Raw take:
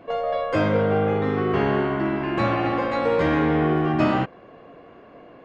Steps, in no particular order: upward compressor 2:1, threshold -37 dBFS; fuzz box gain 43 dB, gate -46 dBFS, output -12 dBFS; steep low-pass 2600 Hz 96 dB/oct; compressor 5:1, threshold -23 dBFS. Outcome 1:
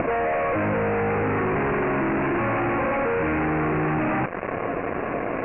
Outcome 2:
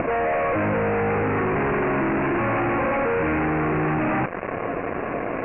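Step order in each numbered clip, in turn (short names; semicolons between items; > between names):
upward compressor > fuzz box > steep low-pass > compressor; upward compressor > fuzz box > compressor > steep low-pass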